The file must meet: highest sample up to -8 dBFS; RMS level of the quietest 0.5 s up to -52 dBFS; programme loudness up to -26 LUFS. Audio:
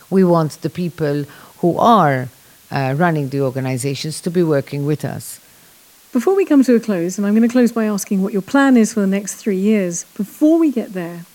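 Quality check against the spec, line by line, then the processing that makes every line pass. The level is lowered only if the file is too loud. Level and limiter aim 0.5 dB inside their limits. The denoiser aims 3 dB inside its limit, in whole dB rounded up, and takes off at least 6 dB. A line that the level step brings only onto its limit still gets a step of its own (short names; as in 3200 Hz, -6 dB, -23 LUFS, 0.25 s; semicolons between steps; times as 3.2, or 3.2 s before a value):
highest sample -1.5 dBFS: fail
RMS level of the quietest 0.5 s -47 dBFS: fail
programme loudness -16.5 LUFS: fail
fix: gain -10 dB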